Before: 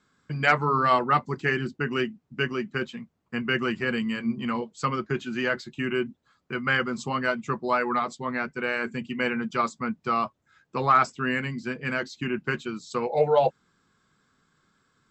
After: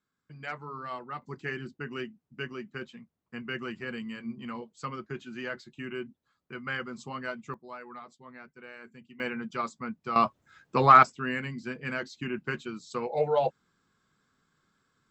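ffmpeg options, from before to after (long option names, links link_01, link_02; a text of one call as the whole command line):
ffmpeg -i in.wav -af "asetnsamples=nb_out_samples=441:pad=0,asendcmd='1.22 volume volume -10dB;7.54 volume volume -19dB;9.2 volume volume -7dB;10.16 volume volume 3.5dB;11.03 volume volume -5dB',volume=-17dB" out.wav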